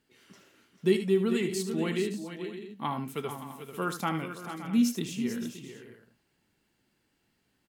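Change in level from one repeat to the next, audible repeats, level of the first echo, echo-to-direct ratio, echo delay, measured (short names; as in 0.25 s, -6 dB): no steady repeat, 4, -10.5 dB, -6.0 dB, 75 ms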